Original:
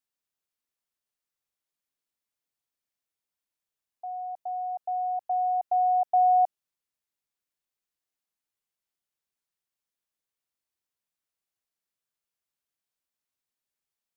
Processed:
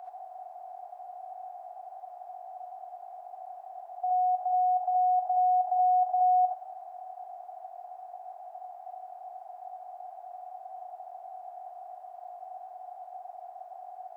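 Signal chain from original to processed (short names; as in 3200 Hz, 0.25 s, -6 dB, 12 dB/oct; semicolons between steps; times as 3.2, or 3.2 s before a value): per-bin compression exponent 0.2; HPF 780 Hz 12 dB/oct; non-linear reverb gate 0.1 s rising, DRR -3 dB; gain -4 dB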